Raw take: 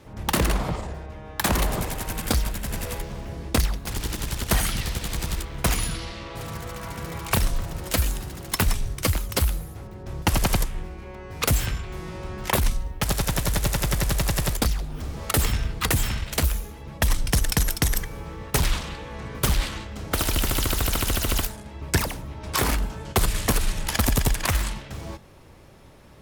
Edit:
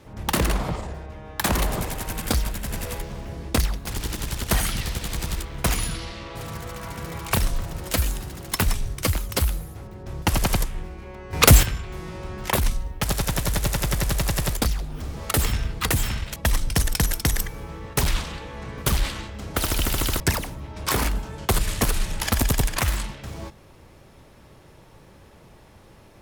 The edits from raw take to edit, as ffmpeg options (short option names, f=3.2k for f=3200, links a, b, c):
-filter_complex "[0:a]asplit=5[a][b][c][d][e];[a]atrim=end=11.332[f];[b]atrim=start=11.328:end=11.632,asetpts=PTS-STARTPTS,volume=9.5dB[g];[c]atrim=start=11.628:end=16.362[h];[d]atrim=start=16.928:end=20.772[i];[e]atrim=start=21.868[j];[f][g]acrossfade=d=0.004:c1=hsin:c2=hsin[k];[k][h]acrossfade=d=0.004:c1=hsin:c2=hsin[l];[l][i]acrossfade=d=0.004:c1=hsin:c2=hsin[m];[m][j]acrossfade=d=0.004:c1=hsin:c2=hsin"